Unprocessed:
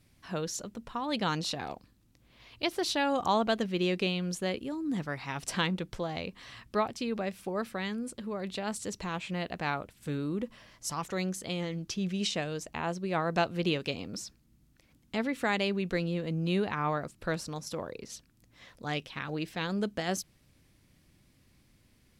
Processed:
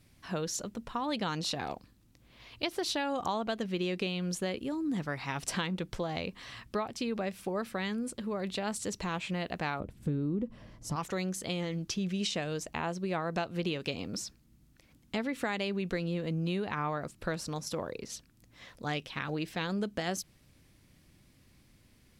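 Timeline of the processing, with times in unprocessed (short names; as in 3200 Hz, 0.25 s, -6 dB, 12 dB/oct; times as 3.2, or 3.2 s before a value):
9.8–10.96 tilt shelf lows +9.5 dB, about 710 Hz
whole clip: compressor, threshold -31 dBFS; gain +2 dB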